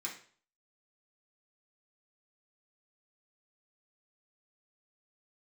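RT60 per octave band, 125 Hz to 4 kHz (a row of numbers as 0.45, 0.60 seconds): 0.50, 0.45, 0.45, 0.45, 0.45, 0.45 seconds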